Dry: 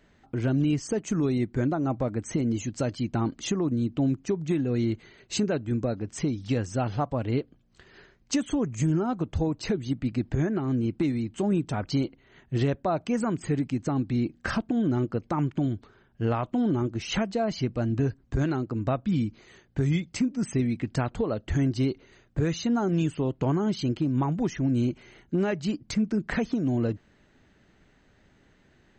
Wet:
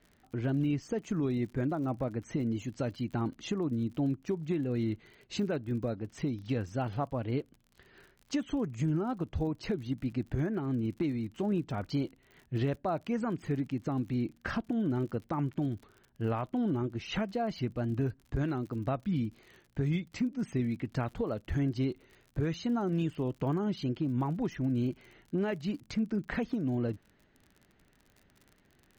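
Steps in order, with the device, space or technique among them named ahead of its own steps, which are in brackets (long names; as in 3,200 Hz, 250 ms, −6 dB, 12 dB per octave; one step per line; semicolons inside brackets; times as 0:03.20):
lo-fi chain (low-pass filter 4,400 Hz 12 dB per octave; tape wow and flutter; surface crackle 52 per second −40 dBFS)
level −5.5 dB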